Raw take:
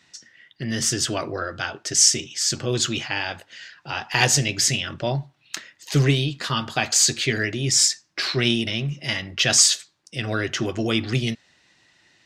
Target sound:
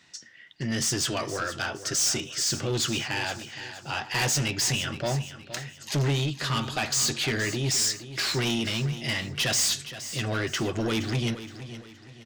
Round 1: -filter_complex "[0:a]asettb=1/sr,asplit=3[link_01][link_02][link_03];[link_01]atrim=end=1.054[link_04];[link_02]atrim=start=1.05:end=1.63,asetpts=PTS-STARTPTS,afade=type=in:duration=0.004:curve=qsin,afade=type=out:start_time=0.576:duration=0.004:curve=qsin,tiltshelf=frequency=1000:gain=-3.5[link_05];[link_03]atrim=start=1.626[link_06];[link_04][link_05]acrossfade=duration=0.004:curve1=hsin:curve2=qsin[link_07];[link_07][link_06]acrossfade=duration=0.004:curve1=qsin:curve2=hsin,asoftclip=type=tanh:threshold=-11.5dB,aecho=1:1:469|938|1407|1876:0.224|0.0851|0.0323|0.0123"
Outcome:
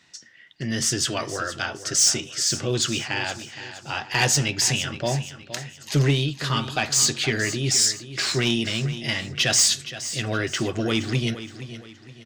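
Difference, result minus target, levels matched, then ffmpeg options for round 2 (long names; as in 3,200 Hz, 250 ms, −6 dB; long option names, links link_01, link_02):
soft clipping: distortion −9 dB
-filter_complex "[0:a]asettb=1/sr,asplit=3[link_01][link_02][link_03];[link_01]atrim=end=1.054[link_04];[link_02]atrim=start=1.05:end=1.63,asetpts=PTS-STARTPTS,afade=type=in:duration=0.004:curve=qsin,afade=type=out:start_time=0.576:duration=0.004:curve=qsin,tiltshelf=frequency=1000:gain=-3.5[link_05];[link_03]atrim=start=1.626[link_06];[link_04][link_05]acrossfade=duration=0.004:curve1=hsin:curve2=qsin[link_07];[link_07][link_06]acrossfade=duration=0.004:curve1=qsin:curve2=hsin,asoftclip=type=tanh:threshold=-22dB,aecho=1:1:469|938|1407|1876:0.224|0.0851|0.0323|0.0123"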